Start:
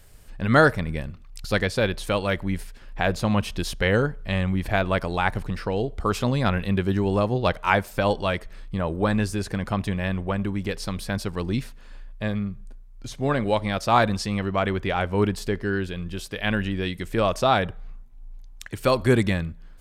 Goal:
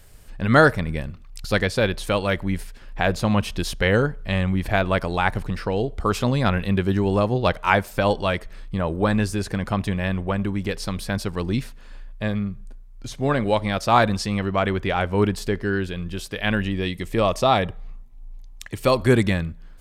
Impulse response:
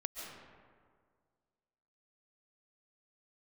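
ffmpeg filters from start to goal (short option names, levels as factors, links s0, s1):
-filter_complex "[0:a]asettb=1/sr,asplit=3[s0][s1][s2];[s0]atrim=end=16.604[s3];[s1]atrim=start=16.6:end=19,asetpts=PTS-STARTPTS,afade=t=in:d=0.004:c=qsin,afade=t=out:st=2.396:d=0.004:c=qsin,bandreject=f=1500:w=6.1[s4];[s2]atrim=start=18.996[s5];[s3][s4]acrossfade=d=0.004:c1=hsin:c2=qsin[s6];[s6][s5]acrossfade=d=0.004:c1=qsin:c2=hsin,volume=1.26"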